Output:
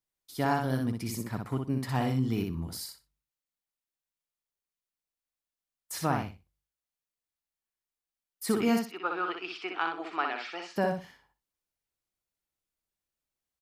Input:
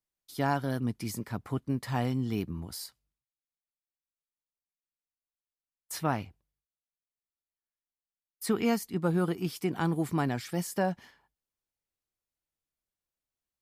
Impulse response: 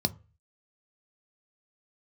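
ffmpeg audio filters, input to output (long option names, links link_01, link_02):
-filter_complex "[0:a]asettb=1/sr,asplit=3[link_01][link_02][link_03];[link_01]atrim=end=8.794[link_04];[link_02]atrim=start=8.79:end=10.76,asetpts=PTS-STARTPTS,afade=type=in:duration=0.004:curve=qsin,afade=type=out:start_time=1.966:duration=0.004:curve=qsin,highpass=frequency=430:width=0.5412,highpass=frequency=430:width=1.3066,equalizer=frequency=520:width_type=q:width=4:gain=-8,equalizer=frequency=1300:width_type=q:width=4:gain=9,equalizer=frequency=2600:width_type=q:width=4:gain=10,lowpass=frequency=4500:width=0.5412,lowpass=frequency=4500:width=1.3066[link_05];[link_03]atrim=start=10.756[link_06];[link_04][link_05]acrossfade=duration=0.004:curve1=hsin:curve2=qsin[link_07];[link_07][link_06]acrossfade=duration=0.004:curve1=qsin:curve2=hsin,asplit=2[link_08][link_09];[link_09]aecho=0:1:61|122|183:0.596|0.119|0.0238[link_10];[link_08][link_10]amix=inputs=2:normalize=0"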